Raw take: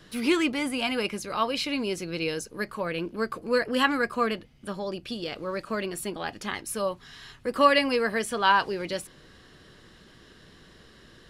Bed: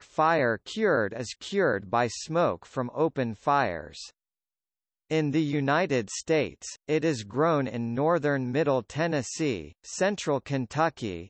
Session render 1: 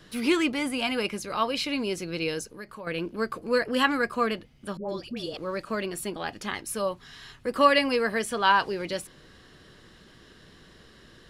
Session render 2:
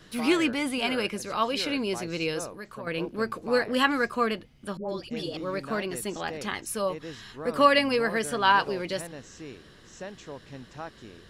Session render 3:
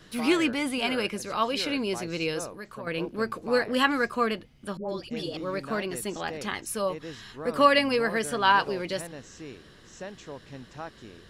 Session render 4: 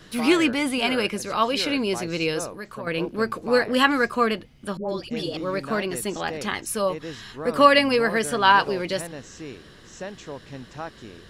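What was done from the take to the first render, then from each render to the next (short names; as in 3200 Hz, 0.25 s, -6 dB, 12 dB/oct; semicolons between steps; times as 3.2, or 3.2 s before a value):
2.46–2.87 compressor 2:1, threshold -44 dBFS; 4.77–5.37 dispersion highs, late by 0.118 s, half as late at 840 Hz
add bed -14.5 dB
nothing audible
gain +4.5 dB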